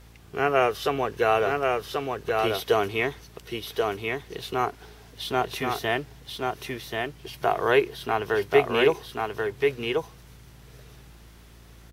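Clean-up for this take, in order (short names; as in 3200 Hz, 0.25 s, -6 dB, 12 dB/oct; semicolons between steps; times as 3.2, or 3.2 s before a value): de-hum 56.6 Hz, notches 6; inverse comb 1.084 s -3.5 dB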